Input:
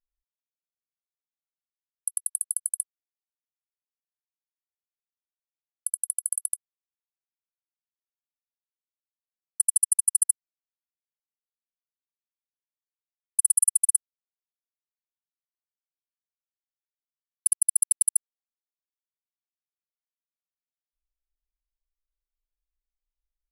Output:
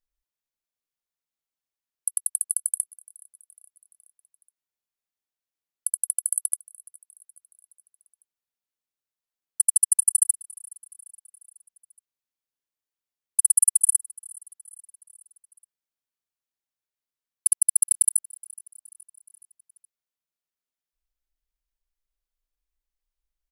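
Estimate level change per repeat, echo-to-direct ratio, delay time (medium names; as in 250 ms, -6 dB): -5.0 dB, -21.5 dB, 421 ms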